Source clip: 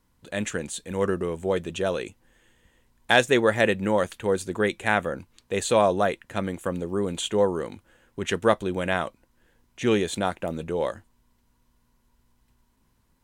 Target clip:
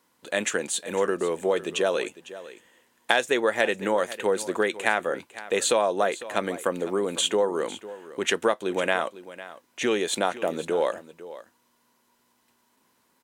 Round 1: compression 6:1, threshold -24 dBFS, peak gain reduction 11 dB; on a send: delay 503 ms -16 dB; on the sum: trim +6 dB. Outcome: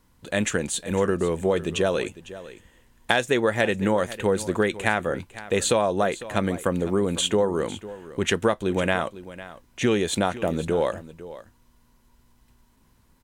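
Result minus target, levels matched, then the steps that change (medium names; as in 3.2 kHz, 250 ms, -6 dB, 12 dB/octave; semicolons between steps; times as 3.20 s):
250 Hz band +4.5 dB
add after compression: high-pass 340 Hz 12 dB/octave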